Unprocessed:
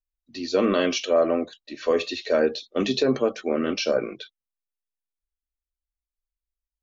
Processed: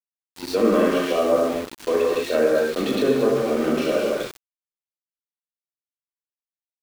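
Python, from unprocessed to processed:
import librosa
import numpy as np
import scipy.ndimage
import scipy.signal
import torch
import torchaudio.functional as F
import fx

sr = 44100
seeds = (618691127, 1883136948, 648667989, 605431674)

y = fx.rev_gated(x, sr, seeds[0], gate_ms=290, shape='flat', drr_db=-4.0)
y = fx.env_lowpass_down(y, sr, base_hz=2000.0, full_db=-15.0)
y = np.where(np.abs(y) >= 10.0 ** (-28.0 / 20.0), y, 0.0)
y = y * librosa.db_to_amplitude(-1.5)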